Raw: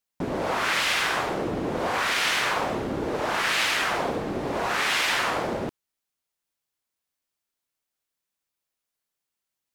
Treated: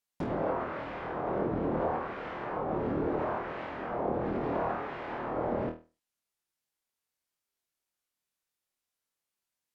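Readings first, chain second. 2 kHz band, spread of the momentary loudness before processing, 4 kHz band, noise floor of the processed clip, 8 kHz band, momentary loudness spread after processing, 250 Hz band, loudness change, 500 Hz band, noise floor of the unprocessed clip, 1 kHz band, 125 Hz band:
-18.0 dB, 7 LU, -29.0 dB, under -85 dBFS, under -35 dB, 7 LU, -2.5 dB, -8.5 dB, -3.0 dB, -85 dBFS, -7.0 dB, -2.0 dB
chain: low-pass that closes with the level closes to 670 Hz, closed at -22 dBFS; flutter echo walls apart 4.3 m, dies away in 0.31 s; trim -4 dB

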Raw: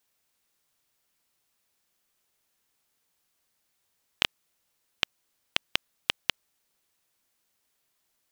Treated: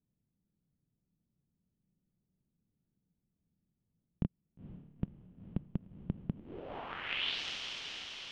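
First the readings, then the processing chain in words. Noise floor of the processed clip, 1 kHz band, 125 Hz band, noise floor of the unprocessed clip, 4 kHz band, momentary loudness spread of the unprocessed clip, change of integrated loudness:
-85 dBFS, -4.5 dB, +13.5 dB, -76 dBFS, -7.5 dB, 3 LU, -8.5 dB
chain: echo that smears into a reverb 478 ms, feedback 63%, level -12 dB; low-pass sweep 180 Hz -> 5.7 kHz, 6.30–7.43 s; trim +8 dB

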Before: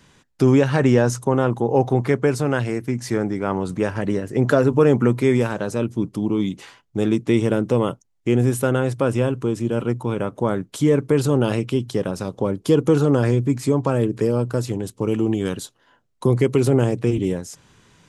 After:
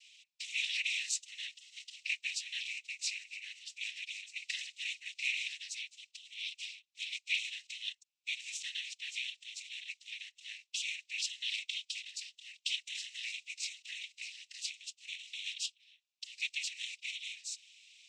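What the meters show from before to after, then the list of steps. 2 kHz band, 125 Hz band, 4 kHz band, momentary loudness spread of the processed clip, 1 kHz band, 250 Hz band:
-7.0 dB, under -40 dB, +1.5 dB, 11 LU, under -40 dB, under -40 dB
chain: block-companded coder 7-bit; distance through air 88 m; noise-vocoded speech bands 12; steep high-pass 2.3 kHz 72 dB/octave; trim +4 dB

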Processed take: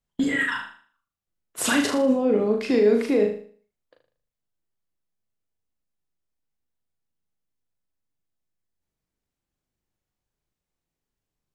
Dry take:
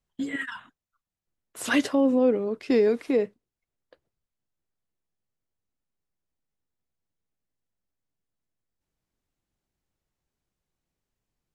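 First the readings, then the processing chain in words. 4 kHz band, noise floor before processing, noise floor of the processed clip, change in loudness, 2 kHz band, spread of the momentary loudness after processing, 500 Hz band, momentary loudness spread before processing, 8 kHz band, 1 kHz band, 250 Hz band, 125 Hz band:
+5.5 dB, under -85 dBFS, under -85 dBFS, +2.5 dB, +5.5 dB, 14 LU, +3.0 dB, 14 LU, +9.0 dB, +4.0 dB, +2.0 dB, no reading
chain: gate -45 dBFS, range -11 dB; peak limiter -22.5 dBFS, peak gain reduction 10.5 dB; flutter echo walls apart 6.6 m, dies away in 0.47 s; trim +8 dB

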